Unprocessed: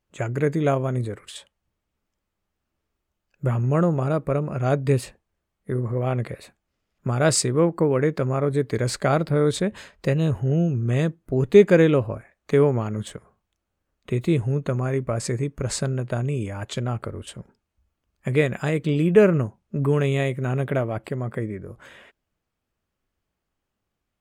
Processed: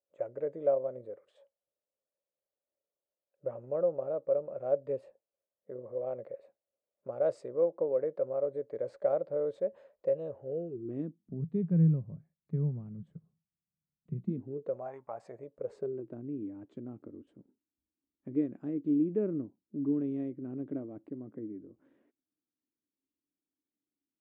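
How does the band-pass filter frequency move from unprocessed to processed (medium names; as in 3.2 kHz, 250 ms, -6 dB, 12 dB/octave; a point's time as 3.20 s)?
band-pass filter, Q 8.2
10.45 s 550 Hz
11.49 s 160 Hz
14.16 s 160 Hz
14.99 s 930 Hz
16.18 s 290 Hz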